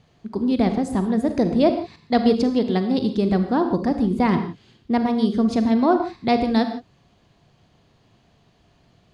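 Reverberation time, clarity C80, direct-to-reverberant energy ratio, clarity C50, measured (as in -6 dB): no single decay rate, 10.5 dB, 7.5 dB, 8.5 dB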